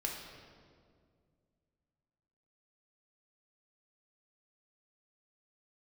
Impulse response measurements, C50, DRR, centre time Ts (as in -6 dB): 3.0 dB, -1.0 dB, 66 ms